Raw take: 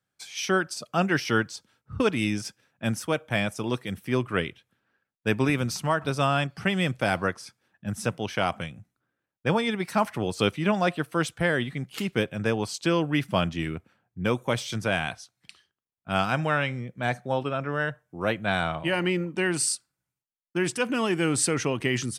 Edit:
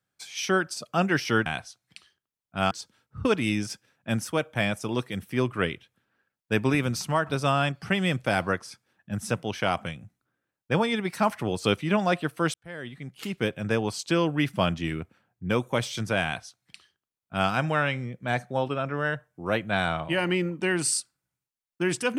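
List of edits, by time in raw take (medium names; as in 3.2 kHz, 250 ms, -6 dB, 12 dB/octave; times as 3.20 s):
11.29–12.38 s: fade in
14.99–16.24 s: copy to 1.46 s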